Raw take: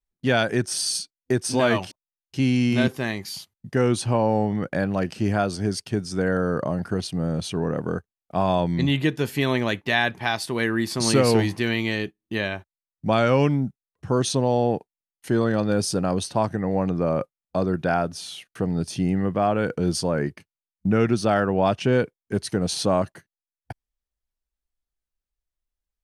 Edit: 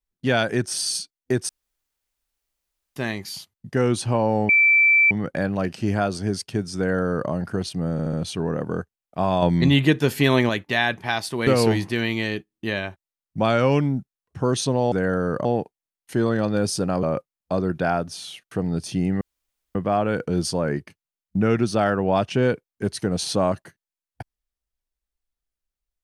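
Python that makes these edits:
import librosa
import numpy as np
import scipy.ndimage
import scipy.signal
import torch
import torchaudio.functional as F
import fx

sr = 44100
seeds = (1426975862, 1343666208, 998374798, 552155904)

y = fx.edit(x, sr, fx.room_tone_fill(start_s=1.49, length_s=1.47),
    fx.insert_tone(at_s=4.49, length_s=0.62, hz=2330.0, db=-12.5),
    fx.duplicate(start_s=6.15, length_s=0.53, to_s=14.6),
    fx.stutter(start_s=7.3, slice_s=0.07, count=4),
    fx.clip_gain(start_s=8.59, length_s=1.07, db=4.5),
    fx.cut(start_s=10.64, length_s=0.51),
    fx.cut(start_s=16.18, length_s=0.89),
    fx.insert_room_tone(at_s=19.25, length_s=0.54), tone=tone)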